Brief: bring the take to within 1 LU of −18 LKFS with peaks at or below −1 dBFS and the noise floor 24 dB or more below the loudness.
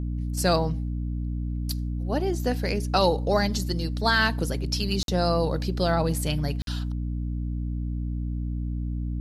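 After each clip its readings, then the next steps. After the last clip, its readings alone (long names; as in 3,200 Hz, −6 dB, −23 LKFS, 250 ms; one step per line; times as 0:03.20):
number of dropouts 2; longest dropout 52 ms; mains hum 60 Hz; hum harmonics up to 300 Hz; level of the hum −26 dBFS; integrated loudness −26.5 LKFS; sample peak −8.5 dBFS; target loudness −18.0 LKFS
→ repair the gap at 0:05.03/0:06.62, 52 ms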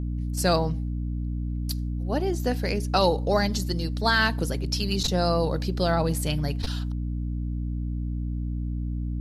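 number of dropouts 0; mains hum 60 Hz; hum harmonics up to 300 Hz; level of the hum −26 dBFS
→ mains-hum notches 60/120/180/240/300 Hz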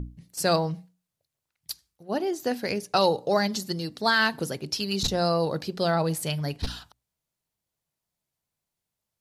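mains hum none found; integrated loudness −26.5 LKFS; sample peak −10.0 dBFS; target loudness −18.0 LKFS
→ level +8.5 dB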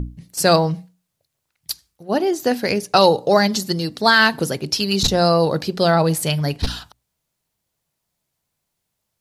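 integrated loudness −18.0 LKFS; sample peak −1.5 dBFS; background noise floor −77 dBFS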